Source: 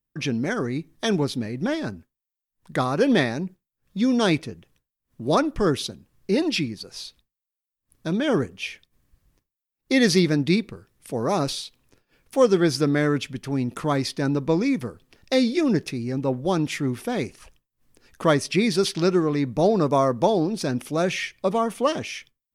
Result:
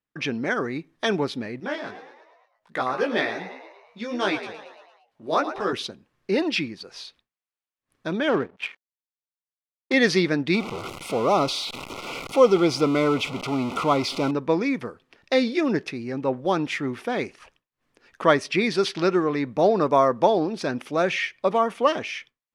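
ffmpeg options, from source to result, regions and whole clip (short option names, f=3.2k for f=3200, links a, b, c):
-filter_complex "[0:a]asettb=1/sr,asplit=3[a][b][c];[a]atrim=end=1.604[d];[b]atrim=start=1.6:end=5.73,asetpts=PTS-STARTPTS,afade=t=in:d=0.004:c=qsin,afade=t=out:st=4.126:d=0.004:c=qsin,lowshelf=f=230:g=-9,asplit=7[e][f][g][h][i][j][k];[f]adelay=114,afreqshift=73,volume=-11.5dB[l];[g]adelay=228,afreqshift=146,volume=-16.9dB[m];[h]adelay=342,afreqshift=219,volume=-22.2dB[n];[i]adelay=456,afreqshift=292,volume=-27.6dB[o];[j]adelay=570,afreqshift=365,volume=-32.9dB[p];[k]adelay=684,afreqshift=438,volume=-38.3dB[q];[e][l][m][n][o][p][q]amix=inputs=7:normalize=0,atrim=end_sample=182133,flanger=delay=15.5:depth=3.4:speed=1.5[r];[c]atrim=start=5.726[s];[d][r]acrossfade=d=0.004:c1=hsin:c2=qsin[t];[t][s]acrossfade=d=0.004:c1=qsin:c2=hsin,asettb=1/sr,asplit=3[u][v][w];[u]atrim=end=8.294[x];[v]atrim=start=8.29:end=9.94,asetpts=PTS-STARTPTS,afade=t=in:d=0.004:c=qsin,afade=t=out:st=1.646:d=0.004:c=qsin,highpass=100,adynamicsmooth=sensitivity=3.5:basefreq=1.3k,aeval=exprs='sgn(val(0))*max(abs(val(0))-0.00251,0)':c=same[y];[w]atrim=start=9.936[z];[x][y]acrossfade=d=0.004:c1=hsin:c2=qsin[aa];[aa][z]acrossfade=d=0.004:c1=qsin:c2=hsin,asettb=1/sr,asplit=3[ab][ac][ad];[ab]atrim=end=10.544[ae];[ac]atrim=start=10.54:end=14.31,asetpts=PTS-STARTPTS,afade=t=in:d=0.004:c=qsin,afade=t=out:st=3.766:d=0.004:c=qsin,aeval=exprs='val(0)+0.5*0.0501*sgn(val(0))':c=same,asuperstop=centerf=1700:order=8:qfactor=2.9[af];[ad]atrim=start=14.306[ag];[ae][af]acrossfade=d=0.004:c1=hsin:c2=qsin[ah];[ah][ag]acrossfade=d=0.004:c1=qsin:c2=hsin,lowpass=2.1k,aemphasis=mode=production:type=riaa,volume=3.5dB"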